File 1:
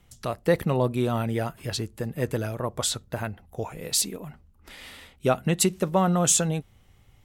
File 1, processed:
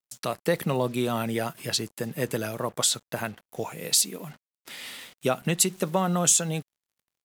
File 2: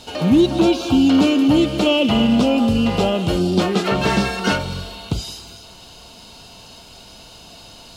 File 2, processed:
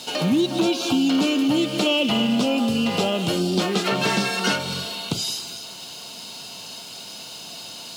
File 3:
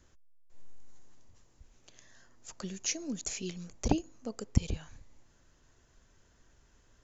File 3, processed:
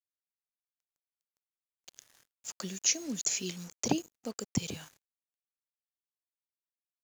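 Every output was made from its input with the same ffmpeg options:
-af "highpass=f=130:w=0.5412,highpass=f=130:w=1.3066,highshelf=f=2.3k:g=8,acompressor=threshold=-22dB:ratio=2,acrusher=bits=7:mix=0:aa=0.5"

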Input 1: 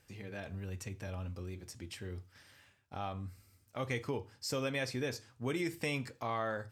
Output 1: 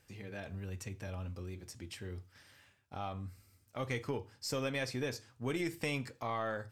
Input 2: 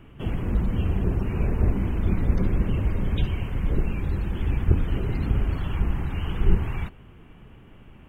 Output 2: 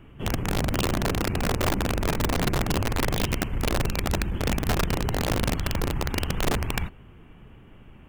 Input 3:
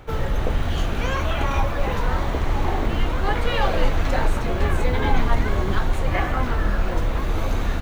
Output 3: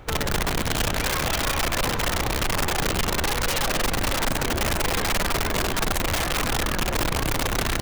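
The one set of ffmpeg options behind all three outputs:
-af "aeval=exprs='(tanh(5.01*val(0)+0.75)-tanh(0.75))/5.01':c=same,aeval=exprs='(mod(12.6*val(0)+1,2)-1)/12.6':c=same,volume=4dB"

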